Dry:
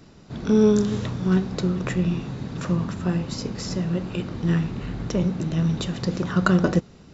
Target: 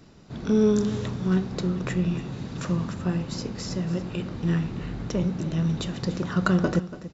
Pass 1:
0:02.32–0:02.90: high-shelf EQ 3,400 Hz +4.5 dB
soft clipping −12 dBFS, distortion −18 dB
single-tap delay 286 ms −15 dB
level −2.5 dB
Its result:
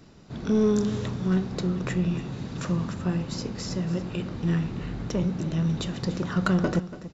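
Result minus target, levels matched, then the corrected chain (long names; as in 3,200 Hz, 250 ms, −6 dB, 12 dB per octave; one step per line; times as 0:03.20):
soft clipping: distortion +10 dB
0:02.32–0:02.90: high-shelf EQ 3,400 Hz +4.5 dB
soft clipping −5.5 dBFS, distortion −28 dB
single-tap delay 286 ms −15 dB
level −2.5 dB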